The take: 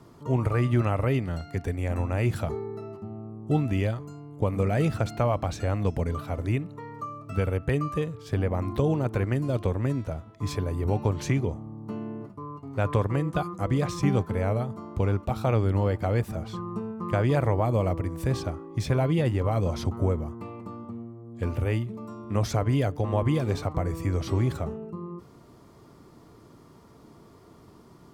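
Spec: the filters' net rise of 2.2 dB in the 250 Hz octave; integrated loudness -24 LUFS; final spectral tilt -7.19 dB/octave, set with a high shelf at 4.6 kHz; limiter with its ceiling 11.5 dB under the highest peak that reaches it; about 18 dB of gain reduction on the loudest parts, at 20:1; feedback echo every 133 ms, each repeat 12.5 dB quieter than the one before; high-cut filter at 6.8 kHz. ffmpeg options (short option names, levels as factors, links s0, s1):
-af "lowpass=6800,equalizer=f=250:t=o:g=3,highshelf=f=4600:g=4,acompressor=threshold=0.0158:ratio=20,alimiter=level_in=3.35:limit=0.0631:level=0:latency=1,volume=0.299,aecho=1:1:133|266|399:0.237|0.0569|0.0137,volume=10"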